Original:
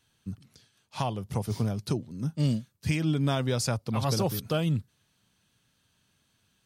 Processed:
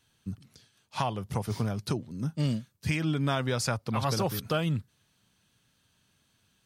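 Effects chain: dynamic bell 1.5 kHz, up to +7 dB, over -47 dBFS, Q 0.72; in parallel at +1.5 dB: compression, threshold -30 dBFS, peak gain reduction 10 dB; on the sum: trim -6 dB

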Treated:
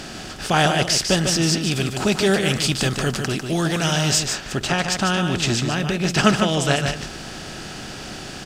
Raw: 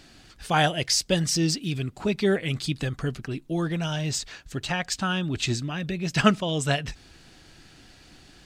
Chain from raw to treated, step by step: spectral levelling over time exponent 0.6; 1.71–4.20 s: treble shelf 3.8 kHz +7 dB; delay 149 ms -6.5 dB; trim +1.5 dB

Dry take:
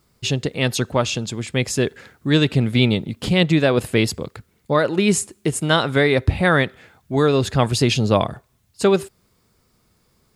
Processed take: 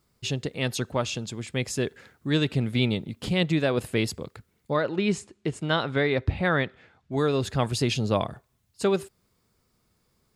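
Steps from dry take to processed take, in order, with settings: 4.77–7.12 s: low-pass 4.7 kHz 12 dB/octave; trim -7.5 dB

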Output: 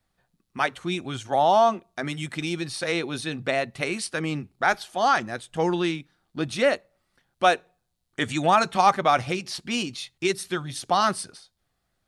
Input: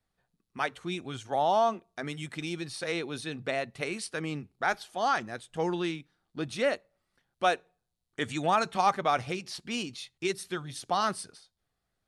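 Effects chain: band-stop 440 Hz, Q 12; trim +6.5 dB

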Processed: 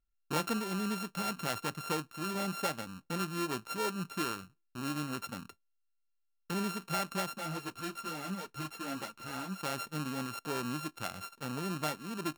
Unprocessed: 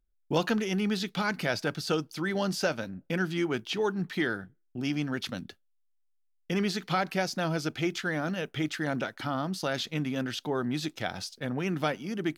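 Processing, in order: sorted samples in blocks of 32 samples; 7.36–9.59 s: three-phase chorus; trim -6 dB

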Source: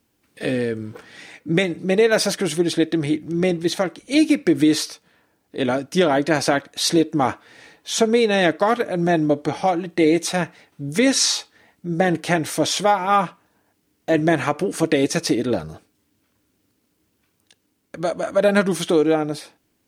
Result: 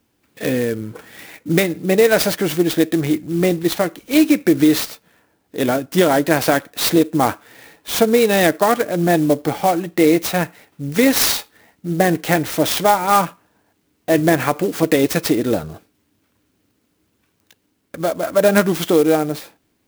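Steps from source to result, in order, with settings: sampling jitter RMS 0.036 ms; trim +3 dB

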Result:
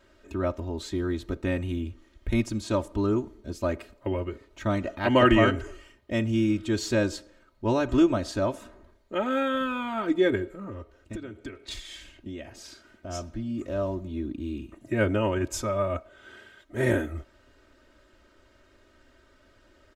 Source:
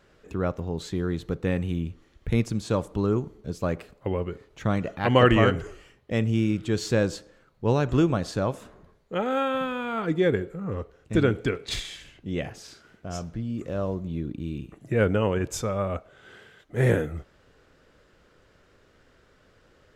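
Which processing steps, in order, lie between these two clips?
comb 3.2 ms, depth 90%; 10.63–13.09 s: compression 16:1, threshold -32 dBFS, peak gain reduction 19 dB; trim -2.5 dB

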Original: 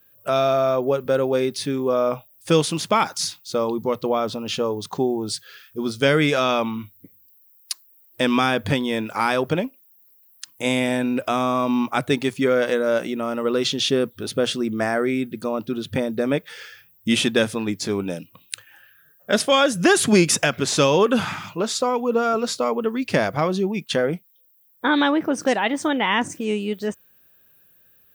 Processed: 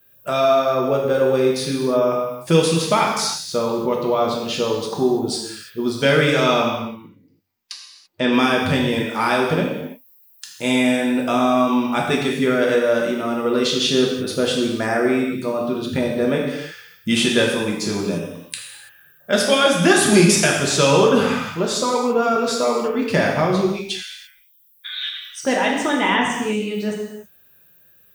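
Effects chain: 6.77–8.33 s: distance through air 110 m; 23.68–25.44 s: inverse Chebyshev band-stop 150–830 Hz, stop band 60 dB; gated-style reverb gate 360 ms falling, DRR -2 dB; trim -1 dB

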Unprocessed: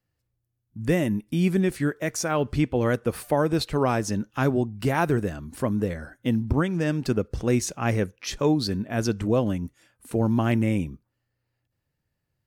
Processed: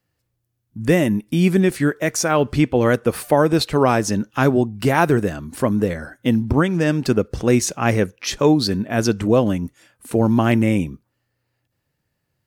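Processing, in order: bass shelf 84 Hz -9 dB; trim +7.5 dB

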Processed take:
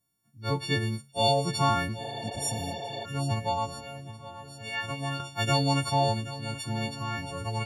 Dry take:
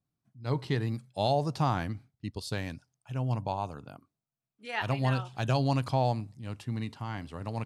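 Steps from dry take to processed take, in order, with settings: partials quantised in pitch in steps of 4 st; 3.69–5.20 s: compression 1.5:1, threshold -44 dBFS, peak gain reduction 8 dB; shuffle delay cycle 1295 ms, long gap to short 1.5:1, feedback 44%, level -14.5 dB; 2.06–3.03 s: spectral replace 310–5000 Hz before; trim +1.5 dB

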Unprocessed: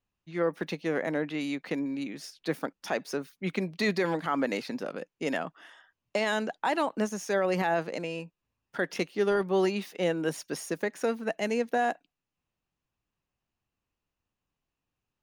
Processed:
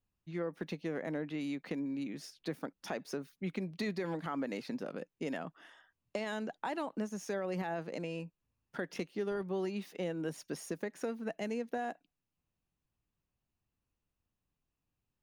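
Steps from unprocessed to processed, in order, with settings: bass shelf 340 Hz +8 dB; compression 2.5:1, threshold -30 dBFS, peak gain reduction 8.5 dB; trim -6 dB

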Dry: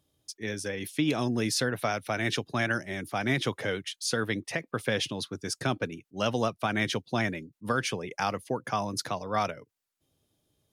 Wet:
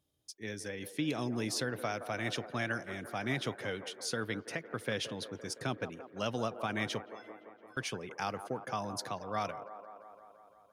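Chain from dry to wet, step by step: 7.06–7.77 s: inharmonic resonator 310 Hz, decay 0.65 s, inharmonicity 0.03; feedback echo behind a band-pass 171 ms, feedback 71%, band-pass 690 Hz, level -10 dB; trim -7 dB

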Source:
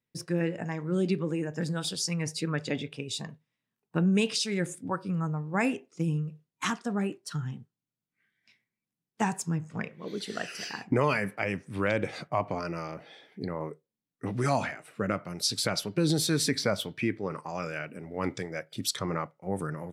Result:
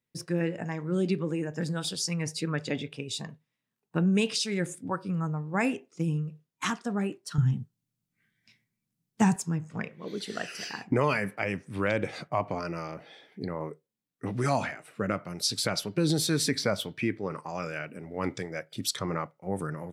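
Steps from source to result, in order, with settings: 7.38–9.36 s: tone controls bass +12 dB, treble +5 dB

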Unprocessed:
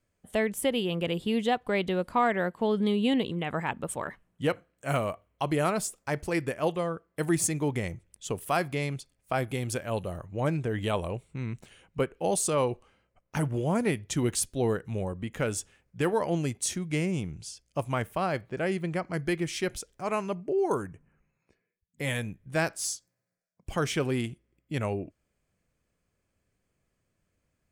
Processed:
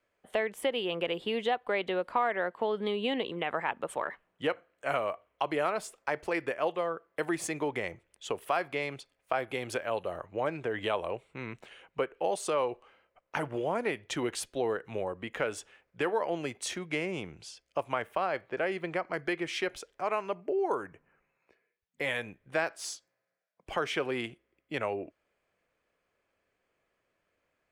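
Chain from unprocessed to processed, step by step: three-band isolator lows -18 dB, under 360 Hz, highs -15 dB, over 3.8 kHz; compression 2:1, threshold -36 dBFS, peak gain reduction 9 dB; trim +5.5 dB

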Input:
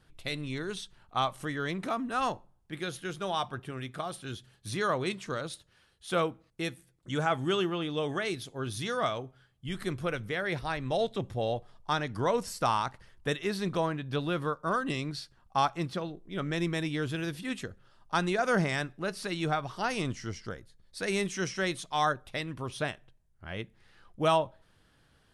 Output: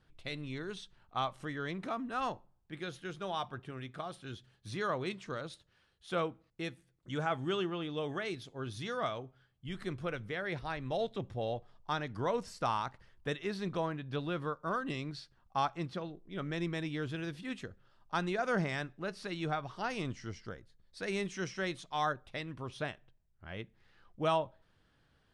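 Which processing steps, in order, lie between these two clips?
distance through air 65 m; trim -5 dB

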